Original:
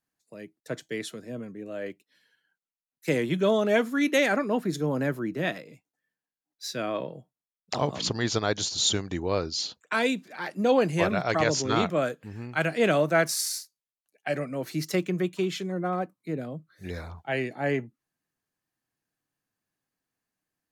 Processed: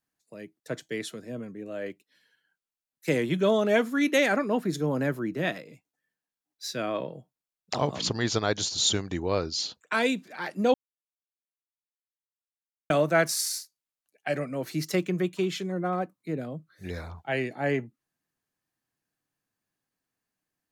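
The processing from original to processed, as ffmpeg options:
ffmpeg -i in.wav -filter_complex "[0:a]asplit=3[link_01][link_02][link_03];[link_01]atrim=end=10.74,asetpts=PTS-STARTPTS,afade=type=out:start_time=10.736:duration=0.004:curve=hsin[link_04];[link_02]atrim=start=10.74:end=12.9,asetpts=PTS-STARTPTS,volume=0[link_05];[link_03]atrim=start=12.9,asetpts=PTS-STARTPTS,afade=type=in:duration=0.004:curve=hsin[link_06];[link_04][link_05][link_06]concat=n=3:v=0:a=1" out.wav

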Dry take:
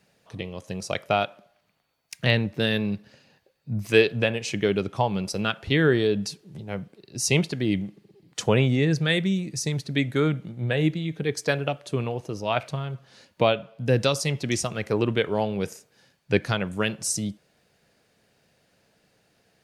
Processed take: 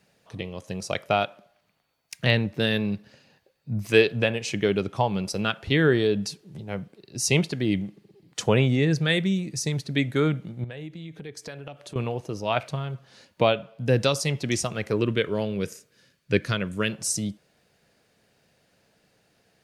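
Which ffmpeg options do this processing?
ffmpeg -i in.wav -filter_complex "[0:a]asettb=1/sr,asplit=3[link_01][link_02][link_03];[link_01]atrim=end=10.644[link_04];[link_02]atrim=start=10.64:end=11.96,asetpts=PTS-STARTPTS,afade=type=in:duration=0.004:curve=qsin,afade=type=out:start_time=1.316:duration=0.004:curve=qsin,acompressor=threshold=-37dB:ratio=4:attack=3.2:release=140:knee=1:detection=peak[link_05];[link_03]atrim=start=11.956[link_06];[link_04][link_05]acrossfade=duration=0.004:curve1=hsin:curve2=qsin[link_07];[link_07][link_06]acrossfade=duration=0.004:curve1=qsin:curve2=hsin,asettb=1/sr,asplit=3[link_08][link_09][link_10];[link_08]atrim=end=14.914[link_11];[link_09]atrim=start=14.91:end=16.92,asetpts=PTS-STARTPTS,afade=type=in:duration=0.004:curve=qsin,afade=type=out:start_time=2.006:duration=0.004:curve=qsin,equalizer=frequency=800:width_type=o:width=0.39:gain=-14[link_12];[link_10]atrim=start=16.916[link_13];[link_11][link_12]acrossfade=duration=0.004:curve1=hsin:curve2=qsin[link_14];[link_14][link_13]acrossfade=duration=0.004:curve1=qsin:curve2=hsin" out.wav

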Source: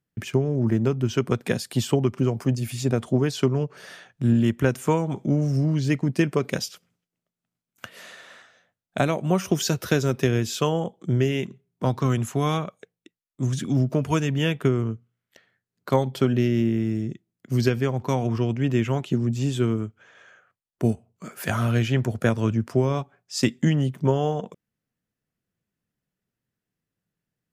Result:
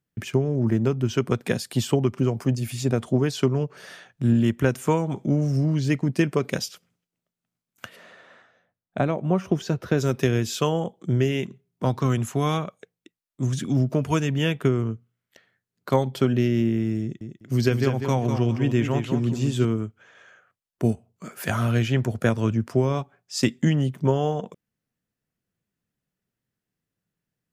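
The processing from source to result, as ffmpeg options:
ffmpeg -i in.wav -filter_complex "[0:a]asplit=3[link_01][link_02][link_03];[link_01]afade=type=out:start_time=7.95:duration=0.02[link_04];[link_02]lowpass=frequency=1200:poles=1,afade=type=in:start_time=7.95:duration=0.02,afade=type=out:start_time=9.97:duration=0.02[link_05];[link_03]afade=type=in:start_time=9.97:duration=0.02[link_06];[link_04][link_05][link_06]amix=inputs=3:normalize=0,asettb=1/sr,asplit=3[link_07][link_08][link_09];[link_07]atrim=end=17.014[link_10];[link_08]atrim=start=17.01:end=19.65,asetpts=PTS-STARTPTS,afade=type=in:duration=0.004:curve=qsin,afade=type=out:start_time=2.636:duration=0.004:curve=qsin,aecho=1:1:198|396|594:0.447|0.0938|0.0197,atrim=end_sample=116424[link_11];[link_09]atrim=start=19.646[link_12];[link_10][link_11]acrossfade=duration=0.004:curve1=hsin:curve2=qsin[link_13];[link_13][link_12]acrossfade=duration=0.004:curve1=qsin:curve2=hsin" out.wav

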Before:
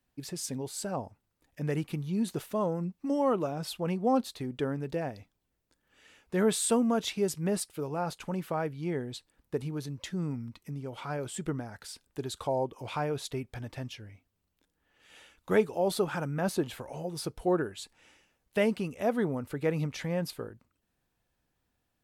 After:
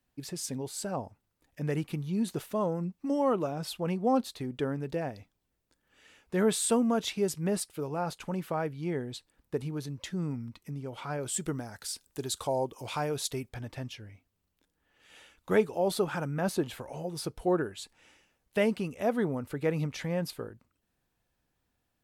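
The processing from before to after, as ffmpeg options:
ffmpeg -i in.wav -filter_complex "[0:a]asettb=1/sr,asplit=3[link_01][link_02][link_03];[link_01]atrim=end=11.264[link_04];[link_02]atrim=start=11.26:end=13.49,asetpts=PTS-STARTPTS,afade=type=in:duration=0.004:curve=qsin,afade=type=out:start_time=2.226:duration=0.004:curve=qsin,bass=frequency=250:gain=-1,treble=frequency=4000:gain=9[link_05];[link_03]atrim=start=13.486[link_06];[link_04][link_05]acrossfade=duration=0.004:curve1=hsin:curve2=qsin[link_07];[link_07][link_06]acrossfade=duration=0.004:curve1=qsin:curve2=hsin" out.wav

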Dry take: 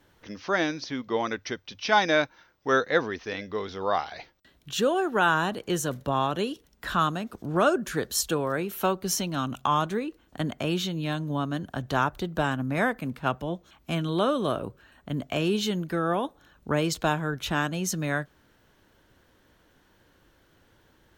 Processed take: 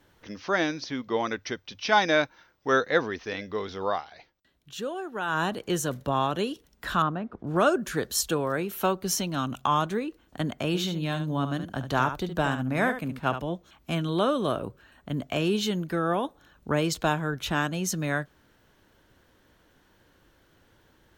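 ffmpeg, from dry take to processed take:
ffmpeg -i in.wav -filter_complex "[0:a]asettb=1/sr,asplit=3[link_01][link_02][link_03];[link_01]atrim=end=7.024[link_04];[link_02]atrim=start=7.02:end=7.47,asetpts=PTS-STARTPTS,afade=type=in:duration=0.004:curve=qsin,afade=type=out:start_time=0.446:duration=0.004:curve=qsin,lowpass=1600[link_05];[link_03]atrim=start=7.466[link_06];[link_04][link_05]acrossfade=duration=0.004:curve1=hsin:curve2=qsin[link_07];[link_07][link_06]acrossfade=duration=0.004:curve1=qsin:curve2=hsin,asettb=1/sr,asplit=3[link_08][link_09][link_10];[link_08]atrim=end=10.674[link_11];[link_09]atrim=start=10.67:end=13.45,asetpts=PTS-STARTPTS,afade=type=in:duration=0.004:curve=qsin,afade=type=out:start_time=2.776:duration=0.004:curve=qsin,aecho=1:1:71:0.335,atrim=end_sample=122598[link_12];[link_10]atrim=start=13.446[link_13];[link_11][link_12]acrossfade=duration=0.004:curve1=hsin:curve2=qsin[link_14];[link_14][link_13]acrossfade=duration=0.004:curve1=qsin:curve2=hsin,asplit=3[link_15][link_16][link_17];[link_15]atrim=end=4.02,asetpts=PTS-STARTPTS,afade=type=out:start_time=3.87:duration=0.15:silence=0.354813[link_18];[link_16]atrim=start=4.02:end=5.27,asetpts=PTS-STARTPTS,volume=-9dB[link_19];[link_17]atrim=start=5.27,asetpts=PTS-STARTPTS,afade=type=in:duration=0.15:silence=0.354813[link_20];[link_18][link_19][link_20]concat=n=3:v=0:a=1" out.wav

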